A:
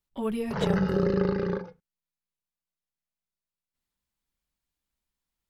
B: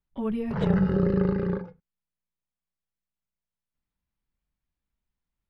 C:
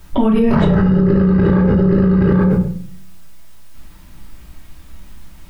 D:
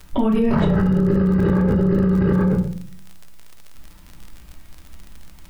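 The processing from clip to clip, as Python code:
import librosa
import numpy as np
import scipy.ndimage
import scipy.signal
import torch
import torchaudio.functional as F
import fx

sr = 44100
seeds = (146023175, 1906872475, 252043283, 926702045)

y1 = fx.bass_treble(x, sr, bass_db=7, treble_db=-14)
y1 = y1 * librosa.db_to_amplitude(-2.0)
y2 = y1 + 10.0 ** (-18.5 / 20.0) * np.pad(y1, (int(825 * sr / 1000.0), 0))[:len(y1)]
y2 = fx.room_shoebox(y2, sr, seeds[0], volume_m3=590.0, walls='furnished', distance_m=2.8)
y2 = fx.env_flatten(y2, sr, amount_pct=100)
y2 = y2 * librosa.db_to_amplitude(-1.0)
y3 = fx.dmg_crackle(y2, sr, seeds[1], per_s=47.0, level_db=-25.0)
y3 = y3 * librosa.db_to_amplitude(-4.5)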